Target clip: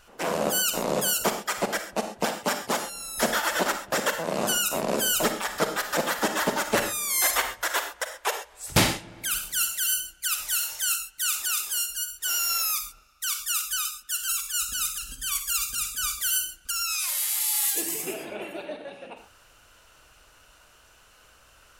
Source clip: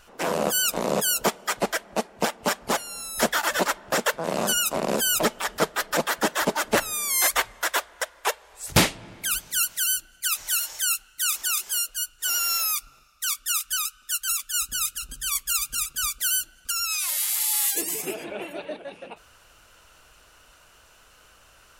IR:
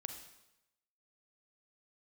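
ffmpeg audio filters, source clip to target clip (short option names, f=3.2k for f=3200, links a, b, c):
-filter_complex "[0:a]asettb=1/sr,asplit=3[a][b][c];[a]atrim=end=2.344[d];[b]atrim=start=2.34:end=2.83,asetpts=PTS-STARTPTS,afade=t=in:d=0.004:c=qsin,afade=t=out:st=0.486:d=0.004:c=qsin,highpass=100[e];[c]atrim=start=2.826[f];[d][e]acrossfade=d=0.004:c1=hsin:c2=qsin[g];[g][f]acrossfade=d=0.004:c1=qsin:c2=hsin[h];[1:a]atrim=start_sample=2205,atrim=end_sample=6174[i];[h][i]afir=irnorm=-1:irlink=0,volume=1.5dB"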